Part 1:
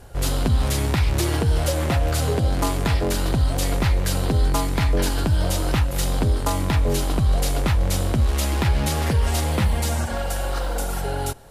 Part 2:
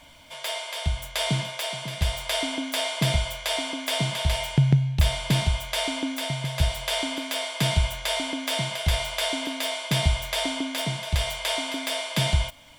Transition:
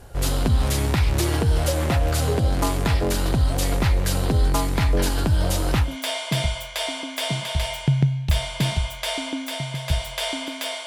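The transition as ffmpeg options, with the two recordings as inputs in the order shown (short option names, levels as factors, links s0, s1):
-filter_complex "[0:a]apad=whole_dur=10.86,atrim=end=10.86,atrim=end=5.97,asetpts=PTS-STARTPTS[s0];[1:a]atrim=start=2.51:end=7.56,asetpts=PTS-STARTPTS[s1];[s0][s1]acrossfade=d=0.16:c1=tri:c2=tri"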